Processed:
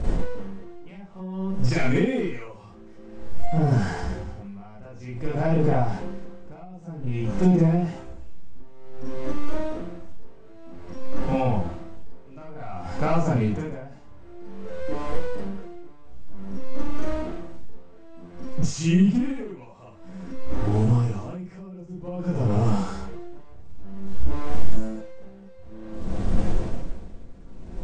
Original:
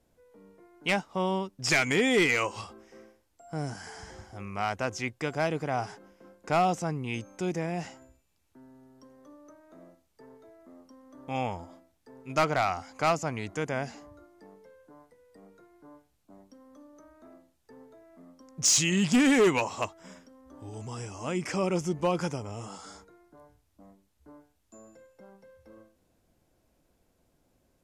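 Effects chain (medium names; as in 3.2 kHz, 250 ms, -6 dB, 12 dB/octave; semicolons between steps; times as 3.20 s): jump at every zero crossing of -34.5 dBFS; brick-wall FIR low-pass 9.1 kHz; Schroeder reverb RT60 0.3 s, combs from 33 ms, DRR -7 dB; compression 5:1, threshold -23 dBFS, peak gain reduction 13 dB; tilt EQ -4 dB/octave; logarithmic tremolo 0.53 Hz, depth 23 dB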